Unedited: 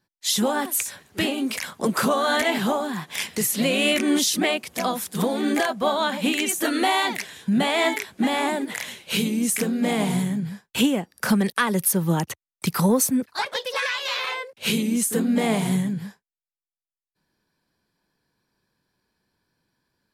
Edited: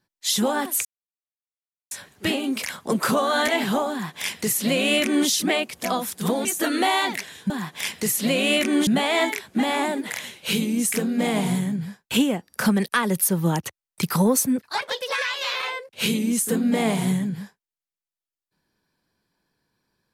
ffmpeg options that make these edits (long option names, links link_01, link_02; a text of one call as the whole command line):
ffmpeg -i in.wav -filter_complex "[0:a]asplit=5[link_01][link_02][link_03][link_04][link_05];[link_01]atrim=end=0.85,asetpts=PTS-STARTPTS,afade=type=out:start_time=0.846:duration=0.004:curve=hsin,apad=pad_dur=1.06[link_06];[link_02]atrim=start=0.85:end=5.392,asetpts=PTS-STARTPTS,afade=type=in:duration=0.004:curve=hsin[link_07];[link_03]atrim=start=6.458:end=7.512[link_08];[link_04]atrim=start=2.848:end=4.222[link_09];[link_05]atrim=start=7.508[link_10];[link_06][link_07]concat=n=2:v=0:a=1[link_11];[link_11][link_08]acrossfade=duration=0.004:curve1=hsin:curve2=hsin[link_12];[link_12][link_09]acrossfade=duration=0.004:curve1=hsin:curve2=hsin[link_13];[link_13][link_10]acrossfade=duration=0.004:curve1=hsin:curve2=hsin" out.wav